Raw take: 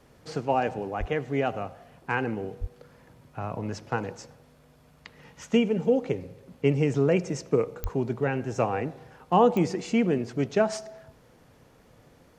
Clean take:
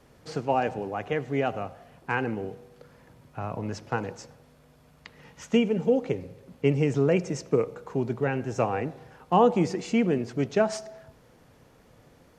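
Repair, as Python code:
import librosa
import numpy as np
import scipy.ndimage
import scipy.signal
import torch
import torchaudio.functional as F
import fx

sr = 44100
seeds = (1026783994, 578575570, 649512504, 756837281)

y = fx.fix_declick_ar(x, sr, threshold=10.0)
y = fx.highpass(y, sr, hz=140.0, slope=24, at=(0.99, 1.11), fade=0.02)
y = fx.highpass(y, sr, hz=140.0, slope=24, at=(2.6, 2.72), fade=0.02)
y = fx.highpass(y, sr, hz=140.0, slope=24, at=(7.82, 7.94), fade=0.02)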